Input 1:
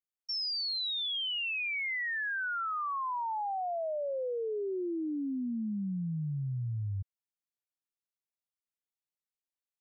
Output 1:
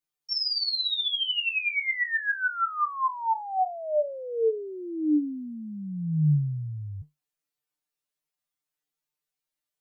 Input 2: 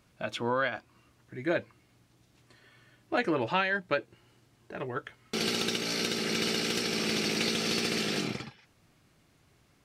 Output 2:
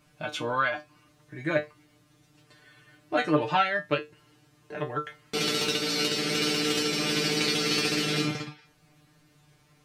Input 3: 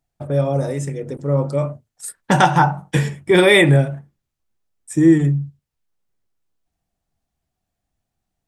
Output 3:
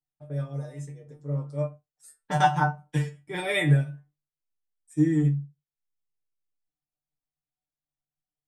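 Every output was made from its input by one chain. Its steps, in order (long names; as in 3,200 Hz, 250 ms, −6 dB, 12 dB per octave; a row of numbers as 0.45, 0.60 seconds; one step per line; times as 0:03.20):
tuned comb filter 150 Hz, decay 0.18 s, harmonics all, mix 100%
expander for the loud parts 1.5 to 1, over −34 dBFS
loudness normalisation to −27 LKFS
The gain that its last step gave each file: +15.0, +13.5, −0.5 decibels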